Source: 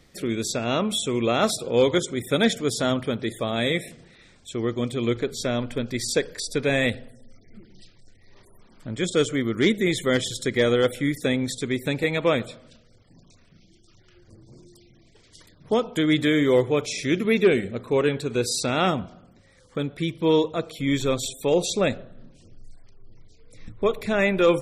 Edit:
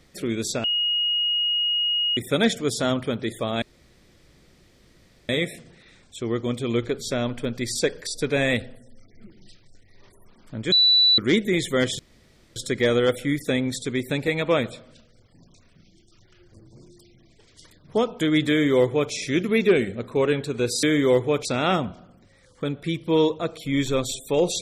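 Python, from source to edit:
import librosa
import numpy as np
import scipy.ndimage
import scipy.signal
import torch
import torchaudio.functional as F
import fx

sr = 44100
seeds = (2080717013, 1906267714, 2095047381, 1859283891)

y = fx.edit(x, sr, fx.bleep(start_s=0.64, length_s=1.53, hz=2880.0, db=-20.0),
    fx.insert_room_tone(at_s=3.62, length_s=1.67),
    fx.bleep(start_s=9.05, length_s=0.46, hz=3960.0, db=-13.5),
    fx.insert_room_tone(at_s=10.32, length_s=0.57),
    fx.duplicate(start_s=16.26, length_s=0.62, to_s=18.59), tone=tone)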